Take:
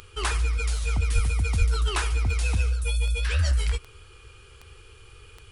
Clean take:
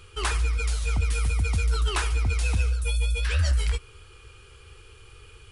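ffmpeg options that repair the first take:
ffmpeg -i in.wav -filter_complex "[0:a]adeclick=threshold=4,asplit=3[link_01][link_02][link_03];[link_01]afade=type=out:start_time=1.14:duration=0.02[link_04];[link_02]highpass=frequency=140:width=0.5412,highpass=frequency=140:width=1.3066,afade=type=in:start_time=1.14:duration=0.02,afade=type=out:start_time=1.26:duration=0.02[link_05];[link_03]afade=type=in:start_time=1.26:duration=0.02[link_06];[link_04][link_05][link_06]amix=inputs=3:normalize=0,asplit=3[link_07][link_08][link_09];[link_07]afade=type=out:start_time=1.58:duration=0.02[link_10];[link_08]highpass=frequency=140:width=0.5412,highpass=frequency=140:width=1.3066,afade=type=in:start_time=1.58:duration=0.02,afade=type=out:start_time=1.7:duration=0.02[link_11];[link_09]afade=type=in:start_time=1.7:duration=0.02[link_12];[link_10][link_11][link_12]amix=inputs=3:normalize=0" out.wav

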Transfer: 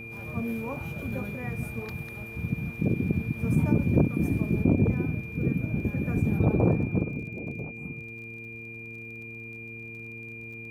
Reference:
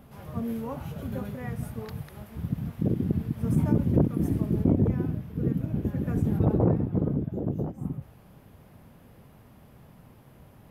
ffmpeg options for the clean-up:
ffmpeg -i in.wav -af "adeclick=threshold=4,bandreject=frequency=113.8:width_type=h:width=4,bandreject=frequency=227.6:width_type=h:width=4,bandreject=frequency=341.4:width_type=h:width=4,bandreject=frequency=455.2:width_type=h:width=4,bandreject=frequency=2400:width=30,asetnsamples=nb_out_samples=441:pad=0,asendcmd='7.03 volume volume 7dB',volume=0dB" out.wav

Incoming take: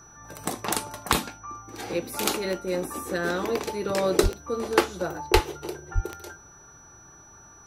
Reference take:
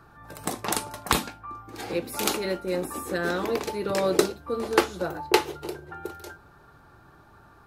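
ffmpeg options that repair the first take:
ffmpeg -i in.wav -filter_complex "[0:a]adeclick=threshold=4,bandreject=frequency=5900:width=30,asplit=3[link_01][link_02][link_03];[link_01]afade=type=out:start_time=4.22:duration=0.02[link_04];[link_02]highpass=frequency=140:width=0.5412,highpass=frequency=140:width=1.3066,afade=type=in:start_time=4.22:duration=0.02,afade=type=out:start_time=4.34:duration=0.02[link_05];[link_03]afade=type=in:start_time=4.34:duration=0.02[link_06];[link_04][link_05][link_06]amix=inputs=3:normalize=0,asplit=3[link_07][link_08][link_09];[link_07]afade=type=out:start_time=5.33:duration=0.02[link_10];[link_08]highpass=frequency=140:width=0.5412,highpass=frequency=140:width=1.3066,afade=type=in:start_time=5.33:duration=0.02,afade=type=out:start_time=5.45:duration=0.02[link_11];[link_09]afade=type=in:start_time=5.45:duration=0.02[link_12];[link_10][link_11][link_12]amix=inputs=3:normalize=0,asplit=3[link_13][link_14][link_15];[link_13]afade=type=out:start_time=5.94:duration=0.02[link_16];[link_14]highpass=frequency=140:width=0.5412,highpass=frequency=140:width=1.3066,afade=type=in:start_time=5.94:duration=0.02,afade=type=out:start_time=6.06:duration=0.02[link_17];[link_15]afade=type=in:start_time=6.06:duration=0.02[link_18];[link_16][link_17][link_18]amix=inputs=3:normalize=0" out.wav

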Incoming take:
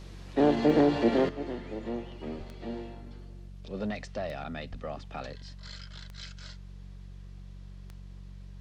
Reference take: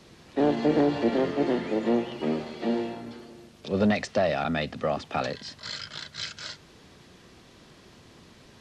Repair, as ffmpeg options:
ffmpeg -i in.wav -filter_complex "[0:a]adeclick=threshold=4,bandreject=frequency=46.9:width_type=h:width=4,bandreject=frequency=93.8:width_type=h:width=4,bandreject=frequency=140.7:width_type=h:width=4,bandreject=frequency=187.6:width_type=h:width=4,asplit=3[link_01][link_02][link_03];[link_01]afade=type=out:start_time=2.37:duration=0.02[link_04];[link_02]highpass=frequency=140:width=0.5412,highpass=frequency=140:width=1.3066,afade=type=in:start_time=2.37:duration=0.02,afade=type=out:start_time=2.49:duration=0.02[link_05];[link_03]afade=type=in:start_time=2.49:duration=0.02[link_06];[link_04][link_05][link_06]amix=inputs=3:normalize=0,asplit=3[link_07][link_08][link_09];[link_07]afade=type=out:start_time=4.7:duration=0.02[link_10];[link_08]highpass=frequency=140:width=0.5412,highpass=frequency=140:width=1.3066,afade=type=in:start_time=4.7:duration=0.02,afade=type=out:start_time=4.82:duration=0.02[link_11];[link_09]afade=type=in:start_time=4.82:duration=0.02[link_12];[link_10][link_11][link_12]amix=inputs=3:normalize=0,asetnsamples=nb_out_samples=441:pad=0,asendcmd='1.29 volume volume 11dB',volume=0dB" out.wav

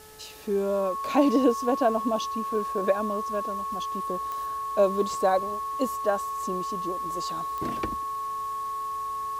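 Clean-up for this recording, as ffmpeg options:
ffmpeg -i in.wav -af "adeclick=threshold=4,bandreject=frequency=432.1:width_type=h:width=4,bandreject=frequency=864.2:width_type=h:width=4,bandreject=frequency=1296.3:width_type=h:width=4,bandreject=frequency=1728.4:width_type=h:width=4,bandreject=frequency=1100:width=30,afwtdn=0.0028" out.wav

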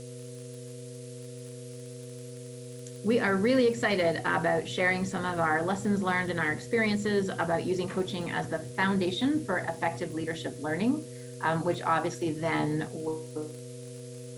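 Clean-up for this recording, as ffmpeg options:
ffmpeg -i in.wav -af "adeclick=threshold=4,bandreject=frequency=126:width_type=h:width=4,bandreject=frequency=252:width_type=h:width=4,bandreject=frequency=378:width_type=h:width=4,bandreject=frequency=504:width_type=h:width=4,bandreject=frequency=630:width_type=h:width=4,bandreject=frequency=480:width=30,afftdn=noise_reduction=30:noise_floor=-42" out.wav

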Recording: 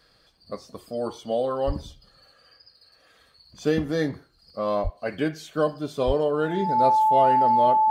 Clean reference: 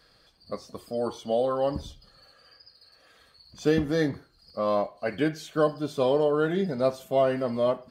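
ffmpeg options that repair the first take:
ffmpeg -i in.wav -filter_complex "[0:a]bandreject=frequency=870:width=30,asplit=3[link_01][link_02][link_03];[link_01]afade=type=out:start_time=1.66:duration=0.02[link_04];[link_02]highpass=frequency=140:width=0.5412,highpass=frequency=140:width=1.3066,afade=type=in:start_time=1.66:duration=0.02,afade=type=out:start_time=1.78:duration=0.02[link_05];[link_03]afade=type=in:start_time=1.78:duration=0.02[link_06];[link_04][link_05][link_06]amix=inputs=3:normalize=0,asplit=3[link_07][link_08][link_09];[link_07]afade=type=out:start_time=4.83:duration=0.02[link_10];[link_08]highpass=frequency=140:width=0.5412,highpass=frequency=140:width=1.3066,afade=type=in:start_time=4.83:duration=0.02,afade=type=out:start_time=4.95:duration=0.02[link_11];[link_09]afade=type=in:start_time=4.95:duration=0.02[link_12];[link_10][link_11][link_12]amix=inputs=3:normalize=0,asplit=3[link_13][link_14][link_15];[link_13]afade=type=out:start_time=6.06:duration=0.02[link_16];[link_14]highpass=frequency=140:width=0.5412,highpass=frequency=140:width=1.3066,afade=type=in:start_time=6.06:duration=0.02,afade=type=out:start_time=6.18:duration=0.02[link_17];[link_15]afade=type=in:start_time=6.18:duration=0.02[link_18];[link_16][link_17][link_18]amix=inputs=3:normalize=0" out.wav

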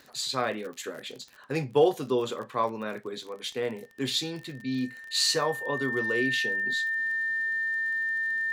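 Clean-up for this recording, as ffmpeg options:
ffmpeg -i in.wav -af "adeclick=threshold=4,bandreject=frequency=1800:width=30" out.wav

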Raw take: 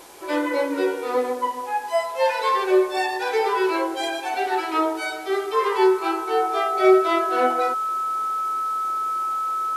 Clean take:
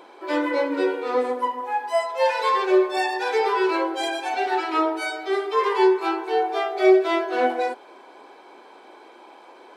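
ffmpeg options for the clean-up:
ffmpeg -i in.wav -af "bandreject=frequency=1300:width=30,afwtdn=0.0045" out.wav

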